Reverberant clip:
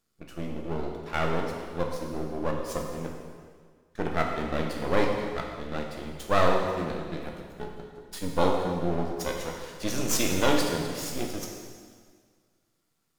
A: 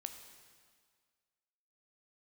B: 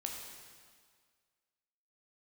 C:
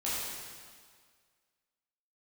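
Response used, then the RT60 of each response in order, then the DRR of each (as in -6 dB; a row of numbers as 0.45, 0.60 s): B; 1.8, 1.8, 1.8 s; 6.5, 0.5, -9.5 dB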